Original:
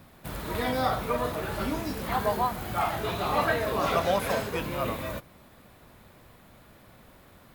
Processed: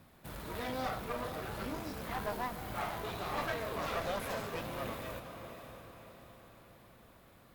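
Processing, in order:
feedback delay with all-pass diffusion 556 ms, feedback 48%, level −11 dB
asymmetric clip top −35 dBFS
level −7.5 dB

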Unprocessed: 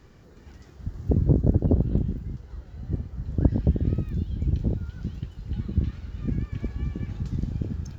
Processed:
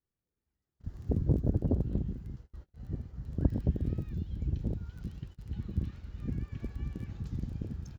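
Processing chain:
surface crackle 15 per second −38 dBFS
pitch-shifted copies added −7 semitones −13 dB
noise gate −38 dBFS, range −32 dB
level −8 dB

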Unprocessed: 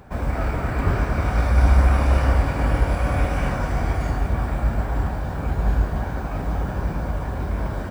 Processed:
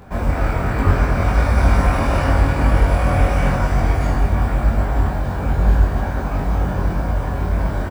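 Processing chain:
double-tracking delay 22 ms −2 dB
level +2.5 dB

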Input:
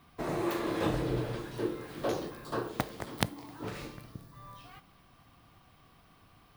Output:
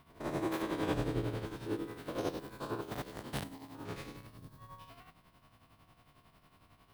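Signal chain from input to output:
spectrum averaged block by block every 100 ms
change of speed 0.947×
amplitude tremolo 11 Hz, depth 61%
level +1 dB

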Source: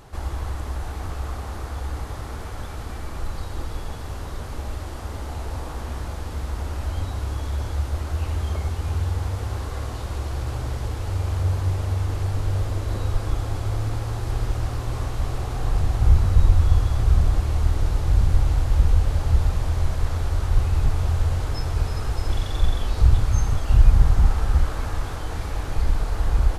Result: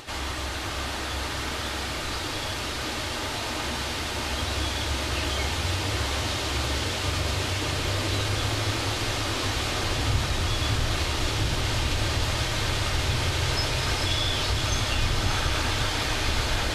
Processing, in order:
meter weighting curve D
brickwall limiter −20.5 dBFS, peak gain reduction 7 dB
time stretch by phase vocoder 0.63×
pitch vibrato 8 Hz 20 cents
feedback delay with all-pass diffusion 659 ms, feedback 78%, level −7 dB
convolution reverb RT60 0.40 s, pre-delay 3 ms, DRR 8.5 dB
level +6 dB

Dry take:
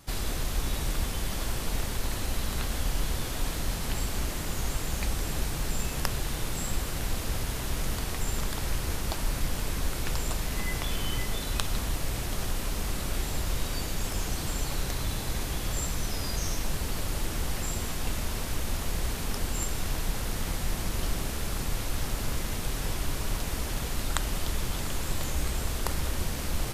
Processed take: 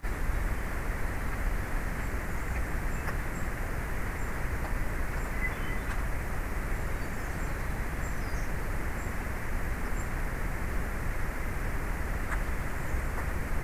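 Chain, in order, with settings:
high shelf with overshoot 2,600 Hz −10 dB, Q 3
time stretch by phase vocoder 0.51×
surface crackle 490 per second −54 dBFS
level +1.5 dB

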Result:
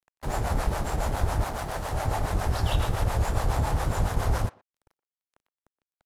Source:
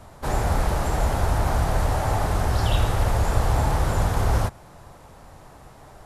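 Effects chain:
0:01.44–0:01.93: low-shelf EQ 180 Hz −9 dB
dead-zone distortion −36.5 dBFS
two-band tremolo in antiphase 7.2 Hz, depth 70%, crossover 460 Hz
far-end echo of a speakerphone 120 ms, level −21 dB

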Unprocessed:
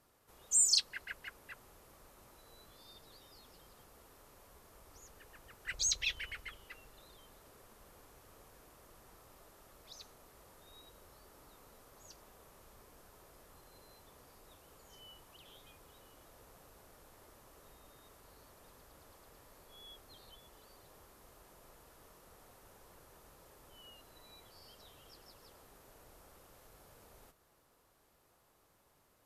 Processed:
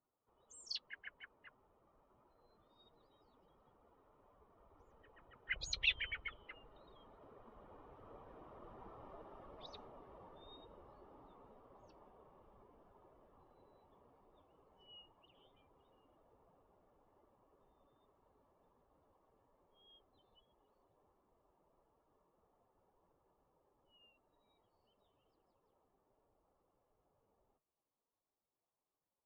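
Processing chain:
spectral dynamics exaggerated over time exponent 1.5
source passing by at 0:09.15, 11 m/s, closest 12 metres
transistor ladder low-pass 3,900 Hz, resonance 30%
level +18 dB

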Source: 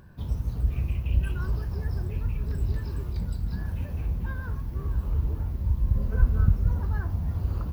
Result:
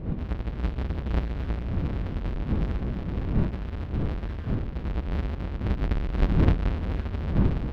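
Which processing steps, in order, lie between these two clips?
each half-wave held at its own peak
wind on the microphone 180 Hz −24 dBFS
high-shelf EQ 2,500 Hz +8.5 dB
in parallel at −10.5 dB: decimation without filtering 34×
on the sum: high-frequency loss of the air 350 metres
level −8.5 dB

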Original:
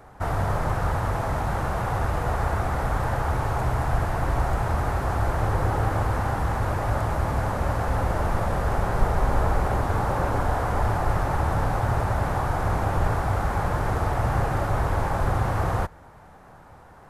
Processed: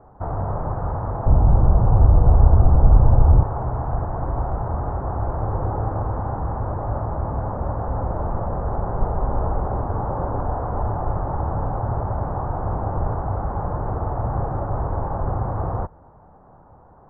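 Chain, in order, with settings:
low-pass filter 1,100 Hz 24 dB per octave
0:01.26–0:03.43: spectral tilt −3.5 dB per octave

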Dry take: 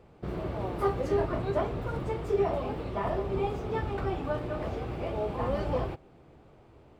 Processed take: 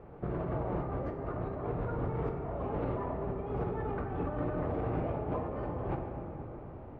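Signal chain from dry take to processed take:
Chebyshev low-pass filter 1,400 Hz, order 2
compressor whose output falls as the input rises −38 dBFS, ratio −1
rectangular room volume 170 cubic metres, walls hard, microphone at 0.35 metres

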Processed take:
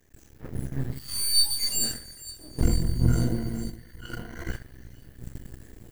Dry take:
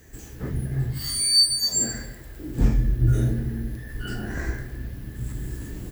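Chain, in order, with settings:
half-wave rectification
0:02.62–0:04.51: EQ curve with evenly spaced ripples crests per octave 1.9, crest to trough 11 dB
delay with a high-pass on its return 454 ms, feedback 56%, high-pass 3,400 Hz, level −8 dB
noise gate −30 dBFS, range −9 dB

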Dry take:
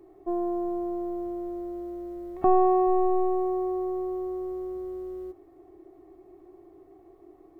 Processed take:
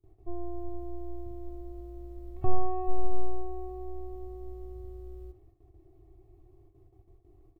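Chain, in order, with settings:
noise gate with hold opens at −44 dBFS
drawn EQ curve 120 Hz 0 dB, 180 Hz −22 dB, 1,800 Hz −26 dB, 2,600 Hz −18 dB
far-end echo of a speakerphone 80 ms, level −10 dB
level +11.5 dB

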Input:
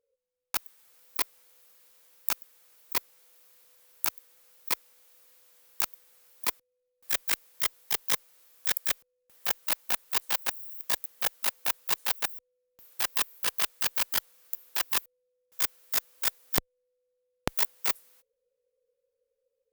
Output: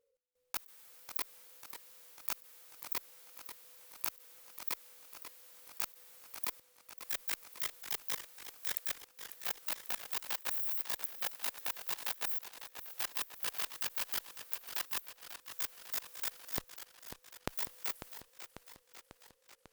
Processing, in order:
output level in coarse steps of 22 dB
feedback echo with a swinging delay time 545 ms, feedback 65%, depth 138 cents, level −10 dB
level +8.5 dB

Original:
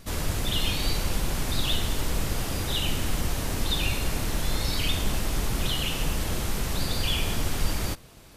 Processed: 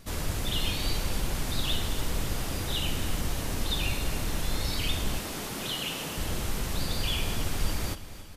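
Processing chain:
0:05.18–0:06.18: high-pass filter 180 Hz 12 dB per octave
on a send: repeating echo 280 ms, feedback 58%, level −15 dB
on the sum: level −3 dB

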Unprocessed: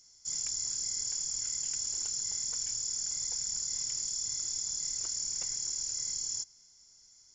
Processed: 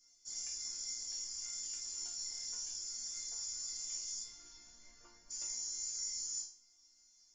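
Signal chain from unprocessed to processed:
0:04.23–0:05.29: low-pass filter 3,100 Hz → 1,500 Hz 12 dB per octave
resonators tuned to a chord A#3 major, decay 0.42 s
level +12.5 dB

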